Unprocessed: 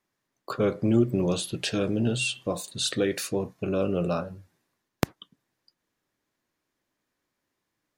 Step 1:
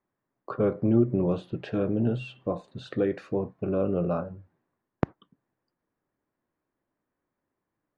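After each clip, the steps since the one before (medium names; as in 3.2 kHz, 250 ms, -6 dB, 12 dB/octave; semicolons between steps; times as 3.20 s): low-pass 1.3 kHz 12 dB/octave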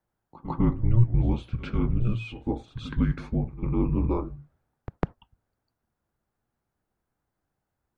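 pre-echo 151 ms -15 dB; frequency shift -240 Hz; trim +2 dB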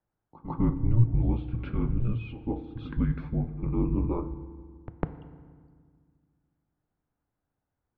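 distance through air 350 m; FDN reverb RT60 1.8 s, low-frequency decay 1.4×, high-frequency decay 0.7×, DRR 11.5 dB; trim -2.5 dB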